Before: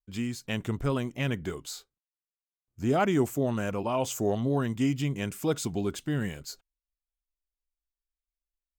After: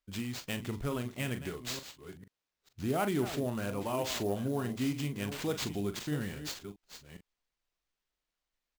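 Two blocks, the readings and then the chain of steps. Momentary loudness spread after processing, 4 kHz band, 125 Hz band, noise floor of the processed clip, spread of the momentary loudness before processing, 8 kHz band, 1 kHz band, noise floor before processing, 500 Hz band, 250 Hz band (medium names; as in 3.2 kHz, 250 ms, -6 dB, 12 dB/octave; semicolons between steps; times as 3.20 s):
16 LU, 0.0 dB, -6.0 dB, under -85 dBFS, 11 LU, -3.0 dB, -5.5 dB, under -85 dBFS, -5.5 dB, -5.5 dB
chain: chunks repeated in reverse 448 ms, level -12.5 dB; in parallel at +3 dB: compression, threshold -40 dBFS, peak gain reduction 18.5 dB; on the sum: treble shelf 4.5 kHz +7 dB; doubling 40 ms -10 dB; sample-rate reducer 11 kHz, jitter 20%; trim -8.5 dB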